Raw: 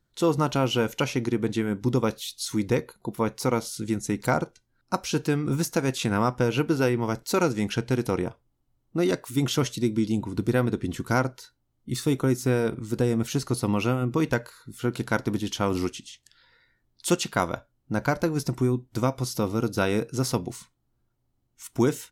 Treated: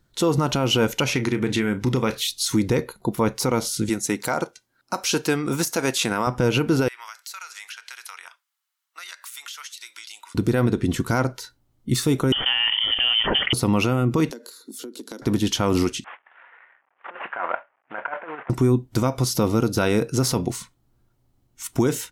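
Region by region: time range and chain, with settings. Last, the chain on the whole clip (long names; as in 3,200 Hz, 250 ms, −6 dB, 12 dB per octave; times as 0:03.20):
0:01.12–0:02.27: parametric band 2,100 Hz +7.5 dB 1.2 octaves + downward compressor 3 to 1, threshold −28 dBFS + double-tracking delay 32 ms −11.5 dB
0:03.89–0:06.27: high-pass filter 490 Hz 6 dB per octave + parametric band 13,000 Hz +2 dB 1.6 octaves
0:06.88–0:10.35: high-pass filter 1,300 Hz 24 dB per octave + downward compressor, threshold −43 dBFS
0:12.32–0:13.53: high-pass filter 500 Hz 6 dB per octave + voice inversion scrambler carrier 3,300 Hz + envelope flattener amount 70%
0:14.31–0:15.22: Butterworth high-pass 230 Hz 48 dB per octave + flat-topped bell 1,300 Hz −13.5 dB 2.5 octaves + downward compressor 20 to 1, threshold −40 dBFS
0:16.04–0:18.50: variable-slope delta modulation 16 kbit/s + compressor whose output falls as the input rises −28 dBFS, ratio −0.5 + flat-topped band-pass 1,200 Hz, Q 0.88
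whole clip: de-essing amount 50%; brickwall limiter −19 dBFS; level +8.5 dB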